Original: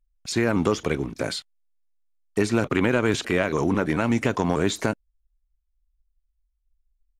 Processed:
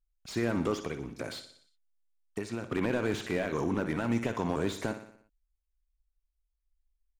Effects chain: 0.83–2.72 s: compression 6:1, threshold -24 dBFS, peak gain reduction 8.5 dB; feedback delay 60 ms, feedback 54%, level -12 dB; slew-rate limiter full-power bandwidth 120 Hz; trim -8 dB

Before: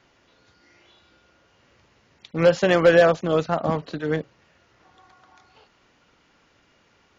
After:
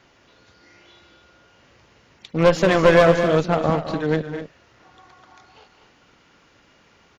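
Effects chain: single-diode clipper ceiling -23 dBFS; loudspeakers at several distances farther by 71 m -11 dB, 85 m -11 dB; trim +4.5 dB

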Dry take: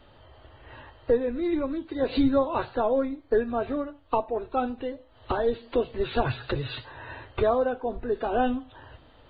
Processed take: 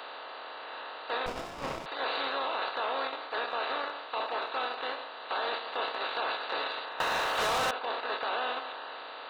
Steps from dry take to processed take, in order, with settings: spectral levelling over time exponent 0.2; gate -14 dBFS, range -19 dB; high-pass 1.4 kHz 12 dB/octave; peak limiter -26 dBFS, peak gain reduction 11.5 dB; transient shaper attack -5 dB, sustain +5 dB; 7.00–7.71 s: waveshaping leveller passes 5; compression, threshold -36 dBFS, peak gain reduction 8.5 dB; 1.26–1.86 s: sliding maximum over 17 samples; trim +7.5 dB

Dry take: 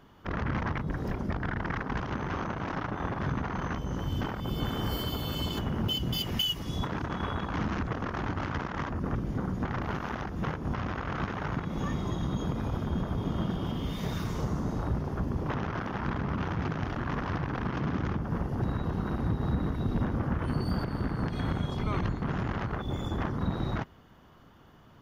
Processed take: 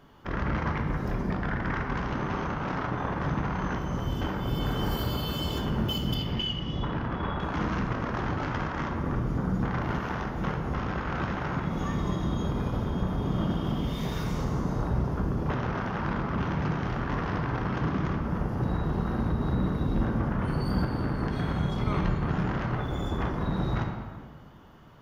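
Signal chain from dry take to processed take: 6.14–7.40 s: distance through air 210 m; reverberation RT60 1.7 s, pre-delay 5 ms, DRR 1 dB

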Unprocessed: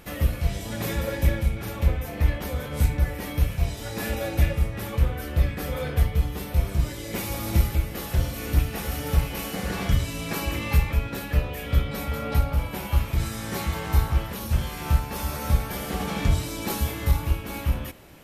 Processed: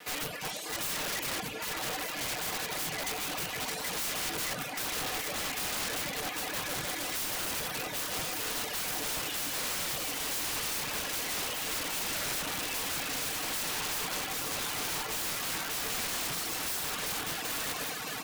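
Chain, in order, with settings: comb filter that takes the minimum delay 6.5 ms; in parallel at +2 dB: peak limiter -19 dBFS, peak gain reduction 7.5 dB; on the sum: comb 4.1 ms, depth 33%; on a send: echo with a slow build-up 155 ms, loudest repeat 8, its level -12 dB; on the sum: reverb removal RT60 1.9 s; frequency weighting A; formant shift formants +2 st; integer overflow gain 25.5 dB; trim -3 dB

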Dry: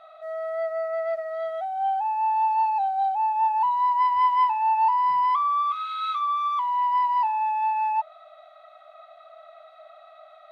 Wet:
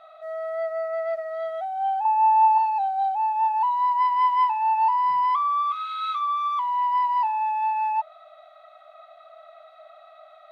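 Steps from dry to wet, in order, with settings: 2.05–2.58 s: peaking EQ 970 Hz +11.5 dB 0.28 oct; 3.53–4.95 s: high-pass 170 Hz 24 dB/octave

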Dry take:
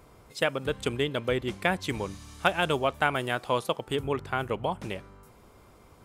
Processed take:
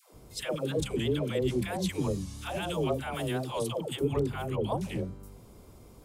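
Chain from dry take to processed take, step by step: pre-echo 37 ms -18.5 dB; peak limiter -18 dBFS, peak gain reduction 11 dB; peaking EQ 1.5 kHz -12 dB 2.4 oct; phase dispersion lows, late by 136 ms, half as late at 540 Hz; warped record 45 rpm, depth 100 cents; trim +5 dB

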